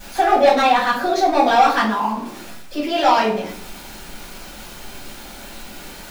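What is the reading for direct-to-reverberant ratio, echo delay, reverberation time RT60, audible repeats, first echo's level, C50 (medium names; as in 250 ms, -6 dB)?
-8.0 dB, no echo, 0.60 s, no echo, no echo, 6.5 dB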